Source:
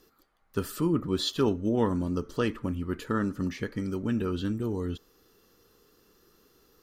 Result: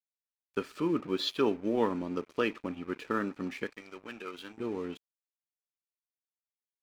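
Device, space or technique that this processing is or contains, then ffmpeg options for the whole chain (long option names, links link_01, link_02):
pocket radio on a weak battery: -filter_complex "[0:a]asettb=1/sr,asplit=3[link_01][link_02][link_03];[link_01]atrim=end=3.724[link_04];[link_02]atrim=start=3.72:end=4.58,asetpts=PTS-STARTPTS,afade=type=in:duration=0.004:curve=qsin,afade=type=out:start_time=0.856:duration=0.004:curve=qsin,highpass=frequency=950:poles=1[link_05];[link_03]atrim=start=4.576[link_06];[link_04][link_05]acrossfade=duration=0.004:curve1=hsin:curve2=qsin[link_07];[link_07][link_06]acrossfade=duration=0.004:curve1=qsin:curve2=hsin,highpass=280,lowpass=4300,aeval=exprs='sgn(val(0))*max(abs(val(0))-0.00316,0)':channel_layout=same,equalizer=frequency=2400:width_type=o:width=0.22:gain=9.5"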